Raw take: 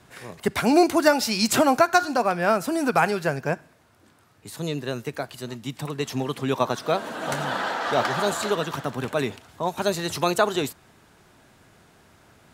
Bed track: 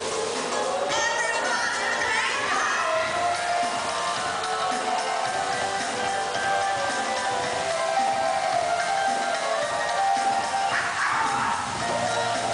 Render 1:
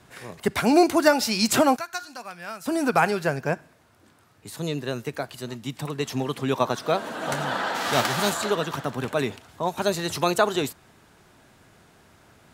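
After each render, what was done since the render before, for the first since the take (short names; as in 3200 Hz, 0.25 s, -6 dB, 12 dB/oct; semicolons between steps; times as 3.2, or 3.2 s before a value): 1.76–2.66 passive tone stack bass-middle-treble 5-5-5; 7.74–8.33 spectral whitening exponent 0.6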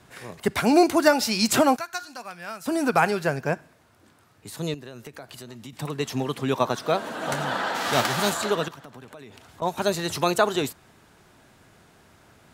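4.74–5.73 compressor 5:1, threshold -37 dBFS; 8.68–9.62 compressor 8:1, threshold -40 dBFS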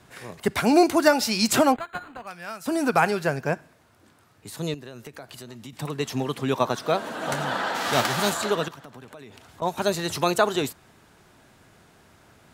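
1.72–2.27 decimation joined by straight lines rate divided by 8×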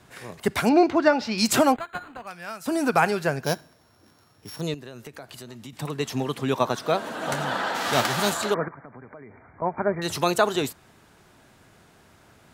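0.69–1.38 air absorption 210 m; 3.44–4.61 sample sorter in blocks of 8 samples; 8.54–10.02 brick-wall FIR low-pass 2400 Hz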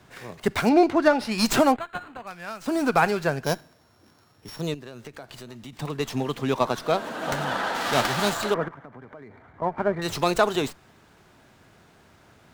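running maximum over 3 samples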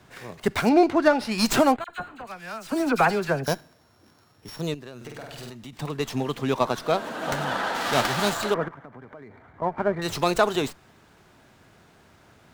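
1.84–3.48 dispersion lows, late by 46 ms, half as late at 1900 Hz; 4.96–5.5 flutter echo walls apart 8.4 m, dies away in 1 s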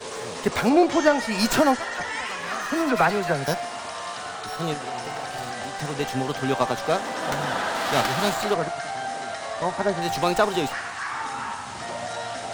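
add bed track -6.5 dB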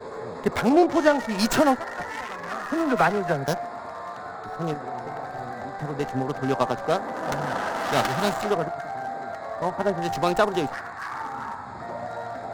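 Wiener smoothing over 15 samples; notch 2400 Hz, Q 28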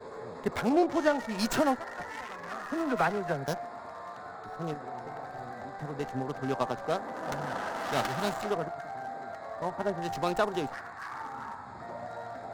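gain -7 dB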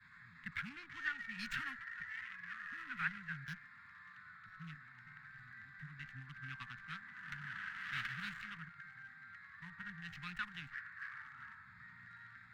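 elliptic band-stop 170–1700 Hz, stop band 80 dB; three-band isolator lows -12 dB, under 390 Hz, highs -23 dB, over 2900 Hz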